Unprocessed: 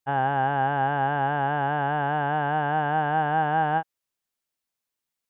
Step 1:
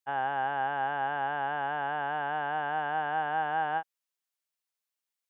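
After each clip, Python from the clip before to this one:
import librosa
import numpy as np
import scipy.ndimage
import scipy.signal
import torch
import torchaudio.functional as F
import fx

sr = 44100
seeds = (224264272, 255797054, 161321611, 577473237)

y = fx.highpass(x, sr, hz=770.0, slope=6)
y = F.gain(torch.from_numpy(y), -3.5).numpy()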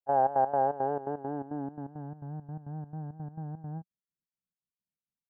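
y = fx.filter_sweep_lowpass(x, sr, from_hz=590.0, to_hz=180.0, start_s=0.51, end_s=2.27, q=3.1)
y = fx.step_gate(y, sr, bpm=169, pattern='.xx.x.xx', floor_db=-12.0, edge_ms=4.5)
y = F.gain(torch.from_numpy(y), 5.5).numpy()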